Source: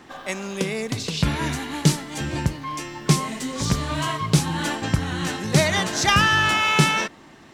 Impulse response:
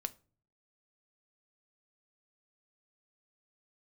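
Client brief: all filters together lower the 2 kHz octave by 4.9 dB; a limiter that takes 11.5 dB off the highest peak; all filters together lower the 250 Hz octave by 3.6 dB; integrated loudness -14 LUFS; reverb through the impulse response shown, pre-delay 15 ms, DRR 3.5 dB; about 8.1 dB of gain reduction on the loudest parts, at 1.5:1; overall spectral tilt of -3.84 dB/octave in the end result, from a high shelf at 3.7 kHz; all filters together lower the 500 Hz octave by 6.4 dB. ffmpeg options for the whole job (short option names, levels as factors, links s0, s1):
-filter_complex "[0:a]equalizer=f=250:t=o:g=-4.5,equalizer=f=500:t=o:g=-7,equalizer=f=2000:t=o:g=-4.5,highshelf=f=3700:g=-4,acompressor=threshold=0.0126:ratio=1.5,alimiter=level_in=1.19:limit=0.0631:level=0:latency=1,volume=0.841,asplit=2[s0][s1];[1:a]atrim=start_sample=2205,adelay=15[s2];[s1][s2]afir=irnorm=-1:irlink=0,volume=0.75[s3];[s0][s3]amix=inputs=2:normalize=0,volume=9.44"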